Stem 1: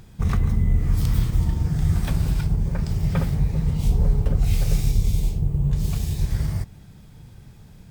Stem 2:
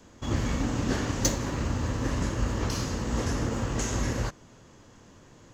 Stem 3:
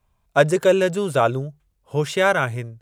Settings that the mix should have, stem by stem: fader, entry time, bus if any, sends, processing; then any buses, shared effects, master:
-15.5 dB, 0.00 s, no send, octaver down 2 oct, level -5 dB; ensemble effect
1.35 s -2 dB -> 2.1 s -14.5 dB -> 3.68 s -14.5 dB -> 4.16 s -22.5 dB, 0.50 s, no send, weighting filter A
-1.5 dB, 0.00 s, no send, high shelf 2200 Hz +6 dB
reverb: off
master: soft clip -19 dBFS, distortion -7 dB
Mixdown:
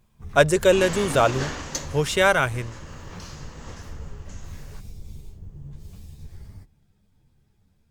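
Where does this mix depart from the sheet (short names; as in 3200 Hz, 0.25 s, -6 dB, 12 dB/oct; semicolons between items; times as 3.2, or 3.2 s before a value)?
stem 2 -2.0 dB -> +4.0 dB; master: missing soft clip -19 dBFS, distortion -7 dB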